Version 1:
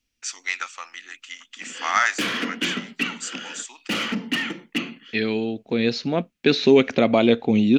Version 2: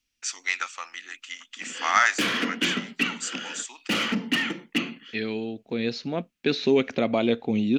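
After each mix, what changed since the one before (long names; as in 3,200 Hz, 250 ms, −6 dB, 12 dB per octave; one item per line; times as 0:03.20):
second voice −6.0 dB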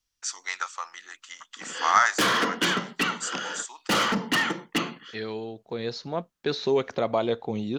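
background +6.0 dB
master: add graphic EQ with 15 bands 250 Hz −11 dB, 1,000 Hz +6 dB, 2,500 Hz −11 dB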